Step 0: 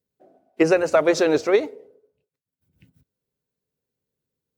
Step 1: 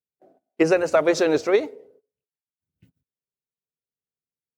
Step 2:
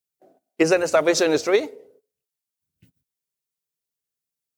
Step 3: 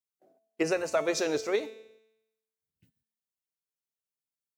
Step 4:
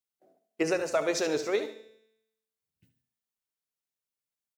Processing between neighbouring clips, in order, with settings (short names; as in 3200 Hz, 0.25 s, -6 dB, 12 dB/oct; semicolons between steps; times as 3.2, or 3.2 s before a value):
gate -55 dBFS, range -17 dB; gain -1 dB
high shelf 3600 Hz +10 dB
resonator 220 Hz, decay 0.92 s, mix 70%
feedback echo 72 ms, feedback 34%, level -11.5 dB